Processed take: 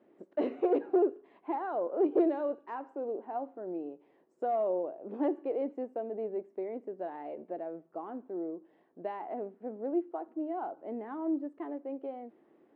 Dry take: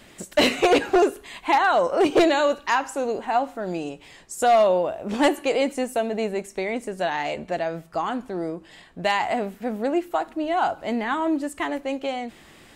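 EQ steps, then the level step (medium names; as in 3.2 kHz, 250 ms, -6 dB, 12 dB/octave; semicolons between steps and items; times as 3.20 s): ladder band-pass 410 Hz, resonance 40%; 0.0 dB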